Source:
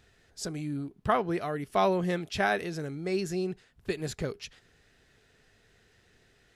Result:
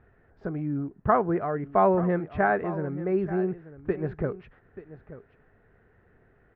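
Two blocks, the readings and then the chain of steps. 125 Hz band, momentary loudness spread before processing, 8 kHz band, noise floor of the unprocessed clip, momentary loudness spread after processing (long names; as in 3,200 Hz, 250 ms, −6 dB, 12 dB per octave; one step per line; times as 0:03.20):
+4.5 dB, 12 LU, below −35 dB, −65 dBFS, 18 LU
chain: low-pass filter 1,600 Hz 24 dB per octave
on a send: single-tap delay 883 ms −15.5 dB
on the sum: level +4.5 dB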